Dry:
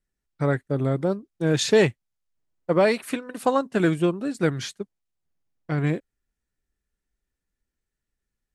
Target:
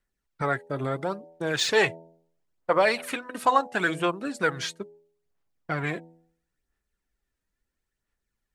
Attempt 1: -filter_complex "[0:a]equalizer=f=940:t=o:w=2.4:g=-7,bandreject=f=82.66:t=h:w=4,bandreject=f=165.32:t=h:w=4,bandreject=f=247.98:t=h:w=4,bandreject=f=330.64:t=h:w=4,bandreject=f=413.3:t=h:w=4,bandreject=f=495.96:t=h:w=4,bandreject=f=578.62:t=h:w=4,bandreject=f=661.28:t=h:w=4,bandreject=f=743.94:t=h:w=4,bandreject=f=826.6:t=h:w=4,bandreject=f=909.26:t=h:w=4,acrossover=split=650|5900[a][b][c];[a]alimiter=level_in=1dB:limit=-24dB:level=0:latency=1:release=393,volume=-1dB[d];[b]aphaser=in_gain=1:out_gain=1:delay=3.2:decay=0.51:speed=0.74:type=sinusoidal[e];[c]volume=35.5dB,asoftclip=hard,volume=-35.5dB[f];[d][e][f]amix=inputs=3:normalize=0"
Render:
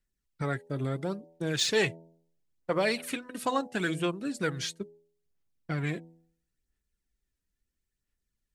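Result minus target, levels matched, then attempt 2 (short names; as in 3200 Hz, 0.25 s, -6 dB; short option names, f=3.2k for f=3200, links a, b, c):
1000 Hz band -5.0 dB
-filter_complex "[0:a]equalizer=f=940:t=o:w=2.4:g=3.5,bandreject=f=82.66:t=h:w=4,bandreject=f=165.32:t=h:w=4,bandreject=f=247.98:t=h:w=4,bandreject=f=330.64:t=h:w=4,bandreject=f=413.3:t=h:w=4,bandreject=f=495.96:t=h:w=4,bandreject=f=578.62:t=h:w=4,bandreject=f=661.28:t=h:w=4,bandreject=f=743.94:t=h:w=4,bandreject=f=826.6:t=h:w=4,bandreject=f=909.26:t=h:w=4,acrossover=split=650|5900[a][b][c];[a]alimiter=level_in=1dB:limit=-24dB:level=0:latency=1:release=393,volume=-1dB[d];[b]aphaser=in_gain=1:out_gain=1:delay=3.2:decay=0.51:speed=0.74:type=sinusoidal[e];[c]volume=35.5dB,asoftclip=hard,volume=-35.5dB[f];[d][e][f]amix=inputs=3:normalize=0"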